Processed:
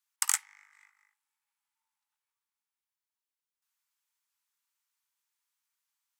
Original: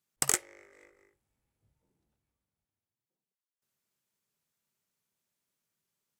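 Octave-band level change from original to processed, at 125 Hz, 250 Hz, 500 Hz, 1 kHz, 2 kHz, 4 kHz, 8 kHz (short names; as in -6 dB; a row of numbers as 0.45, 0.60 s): under -40 dB, under -40 dB, under -35 dB, -1.5 dB, 0.0 dB, 0.0 dB, 0.0 dB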